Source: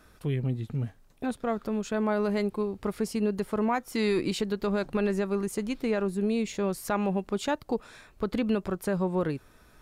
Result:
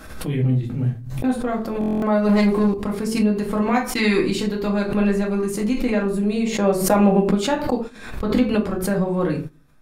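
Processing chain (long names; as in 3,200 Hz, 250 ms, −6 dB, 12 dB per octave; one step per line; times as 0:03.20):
0:03.59–0:04.24: parametric band 4,900 Hz → 1,300 Hz +6.5 dB 1.9 octaves
rectangular room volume 250 cubic metres, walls furnished, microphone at 2.2 metres
0:02.29–0:02.74: leveller curve on the samples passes 2
noise gate −31 dBFS, range −13 dB
0:06.45–0:07.34: parametric band 910 Hz → 270 Hz +7.5 dB 2 octaves
buffer that repeats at 0:01.79, samples 1,024, times 9
background raised ahead of every attack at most 70 dB per second
level +2 dB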